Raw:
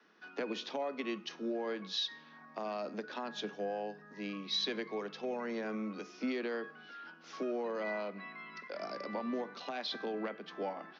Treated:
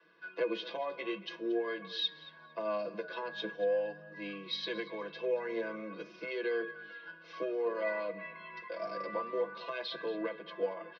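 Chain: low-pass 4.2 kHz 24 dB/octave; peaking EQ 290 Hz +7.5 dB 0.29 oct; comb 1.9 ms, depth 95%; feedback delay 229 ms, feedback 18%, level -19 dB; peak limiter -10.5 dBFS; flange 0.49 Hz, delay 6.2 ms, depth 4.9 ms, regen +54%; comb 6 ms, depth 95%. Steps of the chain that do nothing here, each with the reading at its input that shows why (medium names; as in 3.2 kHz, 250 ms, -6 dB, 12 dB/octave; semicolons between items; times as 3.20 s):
peak limiter -10.5 dBFS: peak at its input -22.0 dBFS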